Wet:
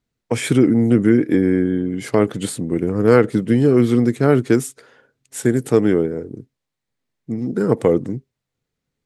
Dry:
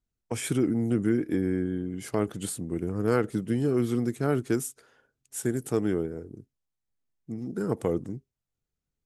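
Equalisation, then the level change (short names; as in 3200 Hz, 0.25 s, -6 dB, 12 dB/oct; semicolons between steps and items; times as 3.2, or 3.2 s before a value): ten-band EQ 125 Hz +9 dB, 250 Hz +8 dB, 500 Hz +10 dB, 1000 Hz +6 dB, 2000 Hz +10 dB, 4000 Hz +8 dB, 8000 Hz +4 dB; 0.0 dB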